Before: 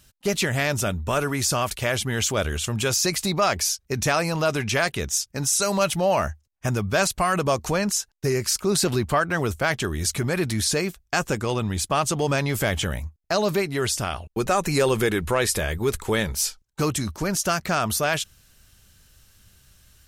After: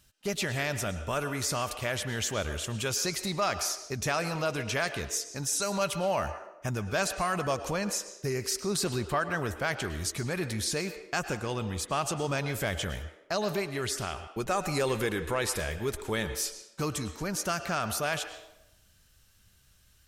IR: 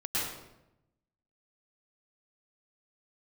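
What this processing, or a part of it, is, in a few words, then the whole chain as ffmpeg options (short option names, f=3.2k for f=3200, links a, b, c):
filtered reverb send: -filter_complex "[0:a]asplit=2[a][b];[b]highpass=f=320:w=0.5412,highpass=f=320:w=1.3066,lowpass=7.4k[c];[1:a]atrim=start_sample=2205[d];[c][d]afir=irnorm=-1:irlink=0,volume=-16dB[e];[a][e]amix=inputs=2:normalize=0,volume=-8dB"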